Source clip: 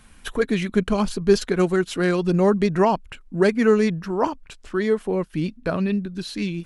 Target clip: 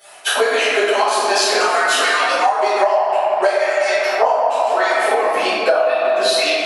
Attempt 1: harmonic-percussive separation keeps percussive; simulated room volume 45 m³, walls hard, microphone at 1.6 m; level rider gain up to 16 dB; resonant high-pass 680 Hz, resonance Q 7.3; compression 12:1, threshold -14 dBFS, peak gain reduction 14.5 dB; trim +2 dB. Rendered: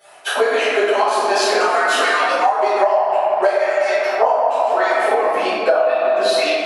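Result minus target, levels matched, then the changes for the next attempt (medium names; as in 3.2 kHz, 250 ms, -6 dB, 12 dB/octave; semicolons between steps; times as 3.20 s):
4 kHz band -4.0 dB
add after resonant high-pass: treble shelf 2.3 kHz +8.5 dB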